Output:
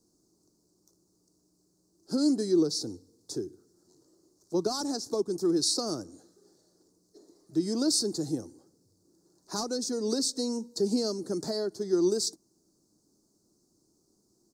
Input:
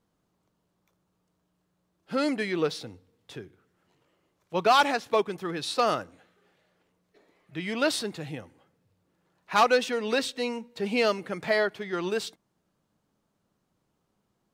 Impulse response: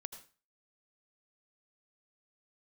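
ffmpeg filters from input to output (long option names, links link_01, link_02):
-filter_complex "[0:a]acrossover=split=200[link_01][link_02];[link_02]acompressor=threshold=-33dB:ratio=3[link_03];[link_01][link_03]amix=inputs=2:normalize=0,firequalizer=gain_entry='entry(170,0);entry(340,13);entry(500,-1);entry(1500,-11);entry(2300,-28);entry(4500,-5);entry(12000,-22)':delay=0.05:min_phase=1,aexciter=amount=9.9:drive=9.2:freq=4700"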